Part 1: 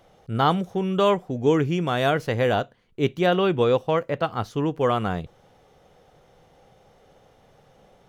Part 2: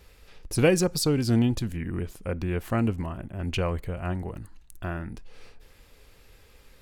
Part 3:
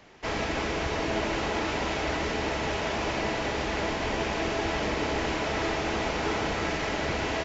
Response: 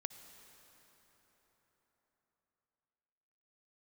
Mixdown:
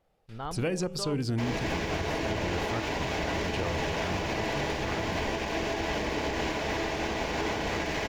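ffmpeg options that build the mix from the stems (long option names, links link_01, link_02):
-filter_complex "[0:a]lowpass=frequency=2600:poles=1,asubboost=boost=10.5:cutoff=94,volume=-16.5dB,asplit=2[link_01][link_02];[1:a]acrossover=split=8200[link_03][link_04];[link_04]acompressor=threshold=-53dB:ratio=4:attack=1:release=60[link_05];[link_03][link_05]amix=inputs=2:normalize=0,bandreject=frequency=75.87:width_type=h:width=4,bandreject=frequency=151.74:width_type=h:width=4,bandreject=frequency=227.61:width_type=h:width=4,bandreject=frequency=303.48:width_type=h:width=4,bandreject=frequency=379.35:width_type=h:width=4,bandreject=frequency=455.22:width_type=h:width=4,bandreject=frequency=531.09:width_type=h:width=4,bandreject=frequency=606.96:width_type=h:width=4,bandreject=frequency=682.83:width_type=h:width=4,bandreject=frequency=758.7:width_type=h:width=4,bandreject=frequency=834.57:width_type=h:width=4,volume=-3.5dB[link_06];[2:a]bandreject=frequency=1300:width=7.5,aeval=exprs='sgn(val(0))*max(abs(val(0))-0.00422,0)':channel_layout=same,adelay=1150,volume=2dB[link_07];[link_02]apad=whole_len=300527[link_08];[link_06][link_08]sidechaingate=range=-22dB:threshold=-60dB:ratio=16:detection=peak[link_09];[link_01][link_09][link_07]amix=inputs=3:normalize=0,alimiter=limit=-20.5dB:level=0:latency=1:release=131"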